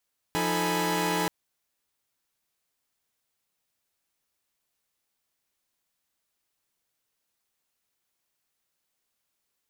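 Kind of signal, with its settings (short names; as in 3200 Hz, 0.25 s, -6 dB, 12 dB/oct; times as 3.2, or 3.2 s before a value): chord F3/D#4/A4/G#5/B5 saw, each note -29 dBFS 0.93 s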